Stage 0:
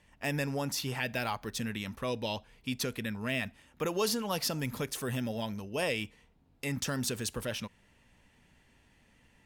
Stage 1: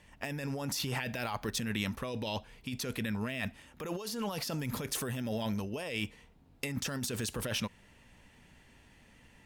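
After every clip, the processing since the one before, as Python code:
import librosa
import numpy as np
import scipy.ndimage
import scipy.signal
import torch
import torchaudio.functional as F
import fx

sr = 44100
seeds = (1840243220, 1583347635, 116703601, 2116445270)

y = fx.over_compress(x, sr, threshold_db=-37.0, ratio=-1.0)
y = y * 10.0 ** (1.5 / 20.0)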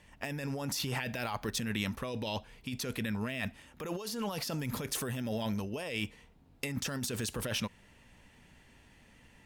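y = x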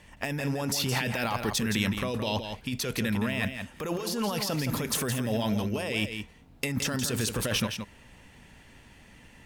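y = x + 10.0 ** (-7.5 / 20.0) * np.pad(x, (int(168 * sr / 1000.0), 0))[:len(x)]
y = y * 10.0 ** (6.0 / 20.0)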